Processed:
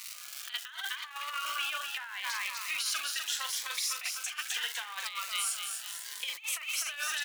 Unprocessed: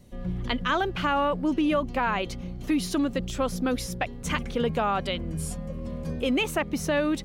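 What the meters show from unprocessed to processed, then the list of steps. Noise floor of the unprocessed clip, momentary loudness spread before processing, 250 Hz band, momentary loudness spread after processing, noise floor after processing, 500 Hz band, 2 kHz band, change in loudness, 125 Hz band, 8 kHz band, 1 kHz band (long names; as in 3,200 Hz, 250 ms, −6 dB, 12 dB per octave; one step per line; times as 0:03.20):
−38 dBFS, 9 LU, below −40 dB, 6 LU, −46 dBFS, −30.0 dB, −3.0 dB, −6.0 dB, below −40 dB, +6.0 dB, −11.5 dB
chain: sub-octave generator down 1 octave, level +3 dB
on a send: repeating echo 250 ms, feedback 48%, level −6 dB
on the sum: background noise brown −39 dBFS
high-shelf EQ 5,800 Hz −6 dB
surface crackle 440 per second −35 dBFS
high-pass filter 1,300 Hz 24 dB per octave
high-shelf EQ 2,400 Hz +7 dB
double-tracking delay 42 ms −8 dB
compressor whose output falls as the input rises −33 dBFS, ratio −0.5
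phaser whose notches keep moving one way rising 0.76 Hz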